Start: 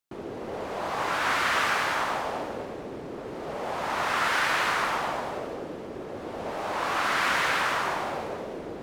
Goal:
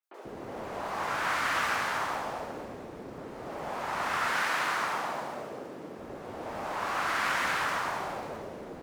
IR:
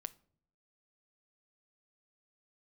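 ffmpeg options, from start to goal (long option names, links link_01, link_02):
-filter_complex "[0:a]asettb=1/sr,asplit=3[link_01][link_02][link_03];[link_01]atrim=end=4.174[link_04];[link_02]atrim=start=4.17:end=5.85,asetpts=PTS-STARTPTS,afade=type=in:duration=0.004:curve=qsin,afade=type=out:start_time=1.676:duration=0.004:curve=qsin,highpass=130[link_05];[link_03]atrim=start=5.846[link_06];[link_04][link_05]acrossfade=duration=0.004:curve1=hsin:curve2=qsin[link_07];[link_07][link_06]acrossfade=duration=0.004:curve1=qsin:curve2=hsin,asplit=2[link_08][link_09];[link_09]acrusher=bits=4:mode=log:mix=0:aa=0.000001,volume=-10.5dB[link_10];[link_08][link_10]amix=inputs=2:normalize=0,acrossover=split=420|3300[link_11][link_12][link_13];[link_13]adelay=30[link_14];[link_11]adelay=140[link_15];[link_15][link_12][link_14]amix=inputs=3:normalize=0,volume=-5.5dB"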